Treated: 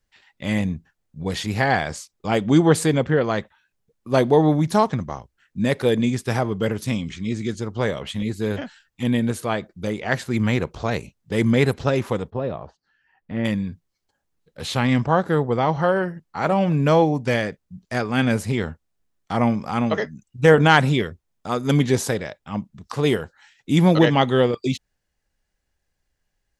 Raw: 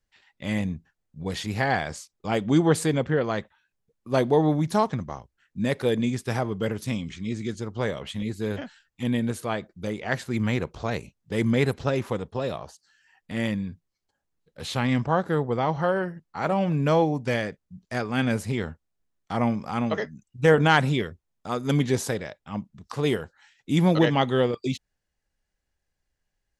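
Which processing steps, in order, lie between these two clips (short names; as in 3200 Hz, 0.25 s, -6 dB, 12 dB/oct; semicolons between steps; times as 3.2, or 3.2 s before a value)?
12.3–13.45 tape spacing loss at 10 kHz 39 dB; gain +4.5 dB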